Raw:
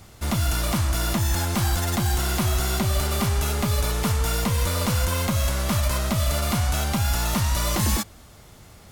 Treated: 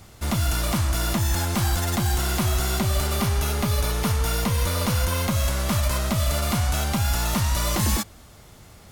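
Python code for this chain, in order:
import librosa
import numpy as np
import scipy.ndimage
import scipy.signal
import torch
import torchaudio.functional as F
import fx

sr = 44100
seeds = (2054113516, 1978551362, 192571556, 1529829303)

y = fx.notch(x, sr, hz=7600.0, q=10.0, at=(3.15, 5.3))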